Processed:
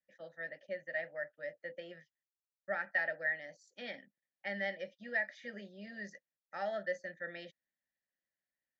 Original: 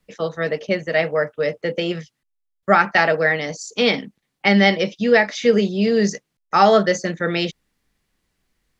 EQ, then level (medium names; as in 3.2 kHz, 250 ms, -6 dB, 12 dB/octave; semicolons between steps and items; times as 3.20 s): vowel filter e; peaking EQ 2.6 kHz +11 dB 0.57 oct; static phaser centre 1.1 kHz, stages 4; -4.5 dB